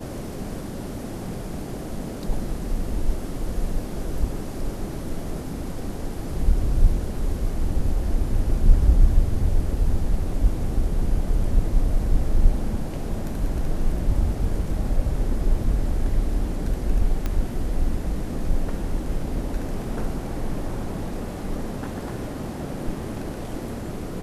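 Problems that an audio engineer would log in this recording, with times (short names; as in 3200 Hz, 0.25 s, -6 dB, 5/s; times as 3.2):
17.26 pop -13 dBFS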